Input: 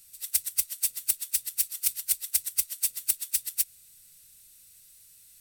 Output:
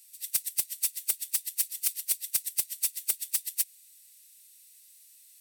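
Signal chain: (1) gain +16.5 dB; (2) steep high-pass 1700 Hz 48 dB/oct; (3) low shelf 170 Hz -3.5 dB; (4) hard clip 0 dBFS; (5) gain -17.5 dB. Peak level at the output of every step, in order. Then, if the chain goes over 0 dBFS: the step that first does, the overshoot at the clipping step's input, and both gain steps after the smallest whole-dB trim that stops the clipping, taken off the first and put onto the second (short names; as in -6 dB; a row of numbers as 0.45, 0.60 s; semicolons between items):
+10.0, +9.0, +9.0, 0.0, -17.5 dBFS; step 1, 9.0 dB; step 1 +7.5 dB, step 5 -8.5 dB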